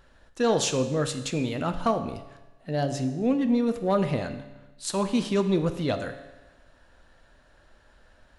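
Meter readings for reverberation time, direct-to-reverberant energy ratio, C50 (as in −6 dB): 1.1 s, 8.0 dB, 11.0 dB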